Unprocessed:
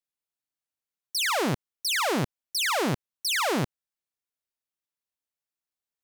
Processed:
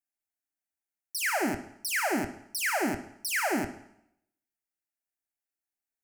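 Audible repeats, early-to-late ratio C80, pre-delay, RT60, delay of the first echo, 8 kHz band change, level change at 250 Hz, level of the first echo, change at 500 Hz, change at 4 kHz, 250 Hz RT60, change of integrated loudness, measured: none, 14.5 dB, 6 ms, 0.75 s, none, -2.5 dB, -1.5 dB, none, -3.5 dB, -10.0 dB, 0.75 s, -3.0 dB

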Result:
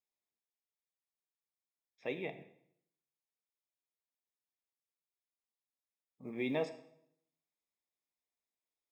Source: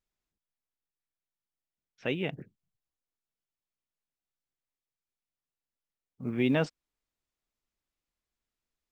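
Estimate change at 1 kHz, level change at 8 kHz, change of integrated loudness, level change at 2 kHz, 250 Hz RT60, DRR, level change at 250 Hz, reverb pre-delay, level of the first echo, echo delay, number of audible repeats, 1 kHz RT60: -6.0 dB, n/a, -8.0 dB, -8.0 dB, 0.75 s, 8.0 dB, -10.5 dB, 3 ms, none, none, none, 0.70 s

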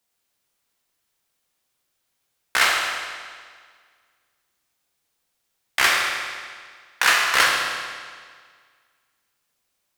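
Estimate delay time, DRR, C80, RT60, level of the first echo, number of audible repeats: none, -2.0 dB, 2.0 dB, 1.8 s, none, none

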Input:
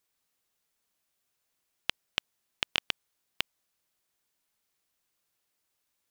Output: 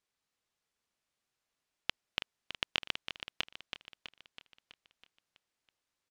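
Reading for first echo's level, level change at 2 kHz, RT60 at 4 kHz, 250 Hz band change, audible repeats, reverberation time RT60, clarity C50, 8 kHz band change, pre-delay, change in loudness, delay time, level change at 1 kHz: -8.5 dB, -3.0 dB, none, -2.0 dB, 6, none, none, -6.5 dB, none, -4.5 dB, 0.326 s, -2.5 dB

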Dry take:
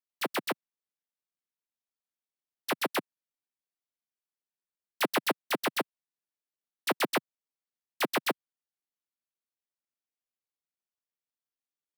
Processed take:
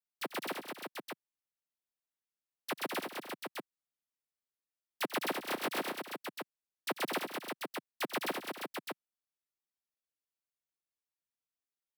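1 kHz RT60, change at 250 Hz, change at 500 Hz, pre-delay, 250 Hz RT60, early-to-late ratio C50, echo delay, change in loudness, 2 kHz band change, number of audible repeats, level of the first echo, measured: none, -4.5 dB, -4.5 dB, none, none, none, 91 ms, -7.0 dB, -4.5 dB, 5, -14.5 dB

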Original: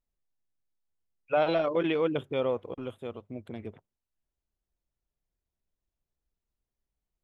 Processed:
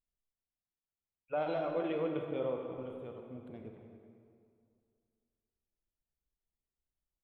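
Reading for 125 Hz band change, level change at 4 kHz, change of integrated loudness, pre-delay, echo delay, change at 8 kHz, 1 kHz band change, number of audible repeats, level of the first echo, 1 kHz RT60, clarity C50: -6.5 dB, -13.0 dB, -8.0 dB, 29 ms, 0.268 s, n/a, -7.5 dB, 1, -15.0 dB, 2.3 s, 3.0 dB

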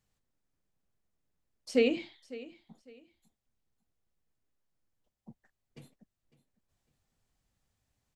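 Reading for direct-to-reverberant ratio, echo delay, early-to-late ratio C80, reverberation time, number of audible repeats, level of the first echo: none, 0.553 s, none, none, 2, -18.0 dB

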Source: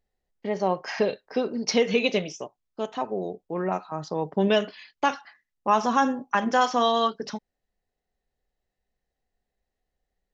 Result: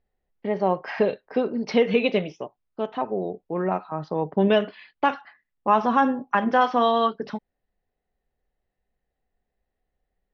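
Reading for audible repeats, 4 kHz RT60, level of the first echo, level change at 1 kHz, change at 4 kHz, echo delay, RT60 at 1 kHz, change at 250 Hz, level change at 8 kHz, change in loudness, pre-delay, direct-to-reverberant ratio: none, none, none, +2.0 dB, -3.5 dB, none, none, +2.5 dB, n/a, +2.0 dB, none, none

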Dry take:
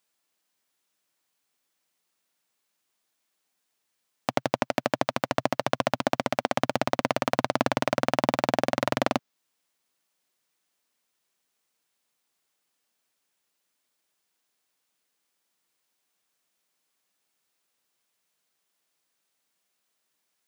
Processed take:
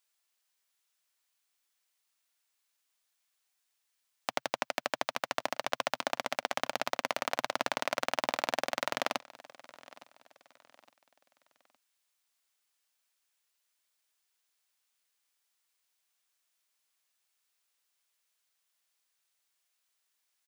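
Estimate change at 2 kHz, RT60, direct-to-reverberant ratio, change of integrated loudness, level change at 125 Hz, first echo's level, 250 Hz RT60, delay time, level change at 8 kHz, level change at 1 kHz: -3.0 dB, none, none, -6.5 dB, -21.0 dB, -21.0 dB, none, 0.863 s, -1.5 dB, -6.5 dB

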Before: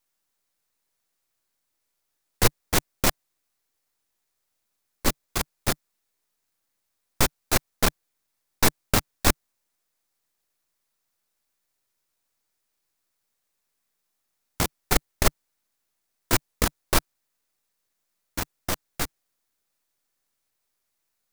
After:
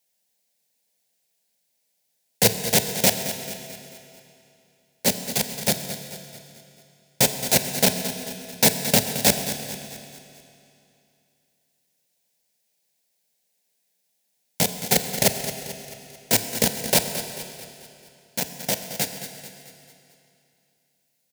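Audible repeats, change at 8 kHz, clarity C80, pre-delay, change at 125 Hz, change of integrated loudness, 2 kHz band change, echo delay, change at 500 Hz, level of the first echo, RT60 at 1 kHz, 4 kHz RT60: 4, +6.5 dB, 7.0 dB, 28 ms, +1.0 dB, +4.0 dB, +1.5 dB, 0.22 s, +5.5 dB, -12.0 dB, 2.7 s, 2.5 s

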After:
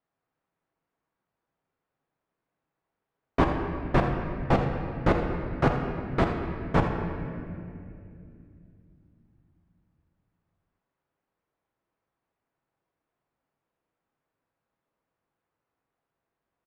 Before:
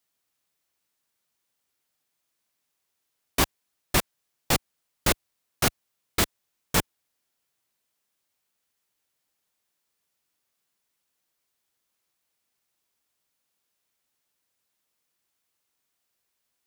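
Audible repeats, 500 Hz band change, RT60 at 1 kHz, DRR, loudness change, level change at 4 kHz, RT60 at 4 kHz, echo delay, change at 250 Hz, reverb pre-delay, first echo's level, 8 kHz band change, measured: 1, +6.0 dB, 2.1 s, 2.0 dB, -1.0 dB, -14.0 dB, 1.7 s, 82 ms, +6.0 dB, 6 ms, -11.0 dB, under -25 dB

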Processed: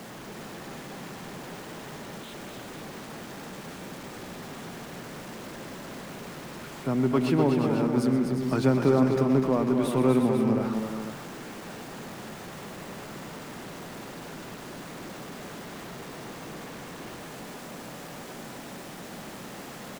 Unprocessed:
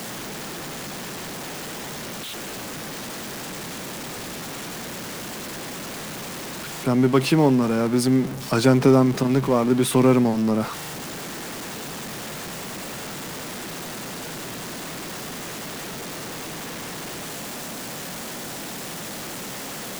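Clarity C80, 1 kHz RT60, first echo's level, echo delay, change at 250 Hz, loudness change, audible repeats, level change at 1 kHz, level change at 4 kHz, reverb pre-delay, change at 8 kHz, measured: none, none, -12.0 dB, 0.126 s, -4.5 dB, -5.0 dB, 4, -5.5 dB, -11.0 dB, none, -13.0 dB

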